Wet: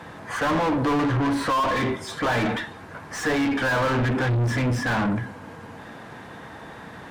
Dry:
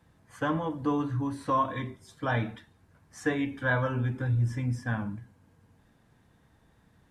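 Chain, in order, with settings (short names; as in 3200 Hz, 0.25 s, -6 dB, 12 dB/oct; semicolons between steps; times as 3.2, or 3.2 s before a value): overdrive pedal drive 38 dB, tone 1600 Hz, clips at -15 dBFS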